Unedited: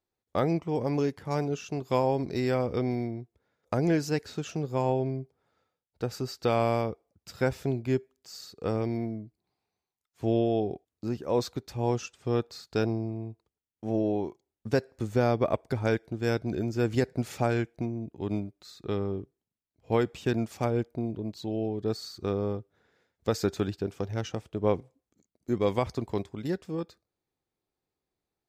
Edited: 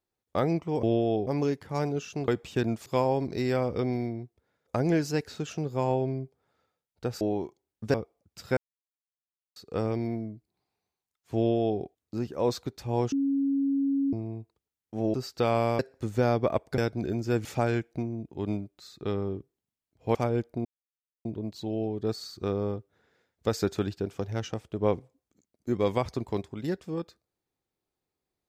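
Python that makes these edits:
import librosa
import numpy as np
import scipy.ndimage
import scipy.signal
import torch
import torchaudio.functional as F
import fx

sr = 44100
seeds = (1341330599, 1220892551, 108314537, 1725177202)

y = fx.edit(x, sr, fx.swap(start_s=6.19, length_s=0.65, other_s=14.04, other_length_s=0.73),
    fx.silence(start_s=7.47, length_s=0.99),
    fx.duplicate(start_s=10.27, length_s=0.44, to_s=0.83),
    fx.bleep(start_s=12.02, length_s=1.01, hz=276.0, db=-23.0),
    fx.cut(start_s=15.76, length_s=0.51),
    fx.cut(start_s=16.94, length_s=0.34),
    fx.move(start_s=19.98, length_s=0.58, to_s=1.84),
    fx.insert_silence(at_s=21.06, length_s=0.6), tone=tone)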